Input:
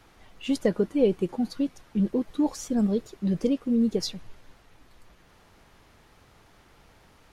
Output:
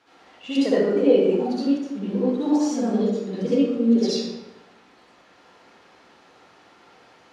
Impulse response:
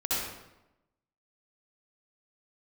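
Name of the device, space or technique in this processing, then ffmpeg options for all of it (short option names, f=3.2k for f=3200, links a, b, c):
supermarket ceiling speaker: -filter_complex "[0:a]highpass=270,lowpass=6k[a];[1:a]atrim=start_sample=2205[b];[a][b]afir=irnorm=-1:irlink=0,volume=-2dB"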